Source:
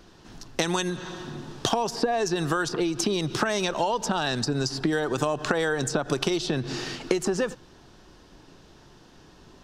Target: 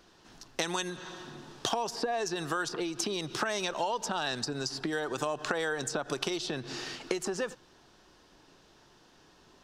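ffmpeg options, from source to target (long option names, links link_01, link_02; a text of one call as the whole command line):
ffmpeg -i in.wav -af "lowshelf=frequency=290:gain=-9.5,volume=-4.5dB" out.wav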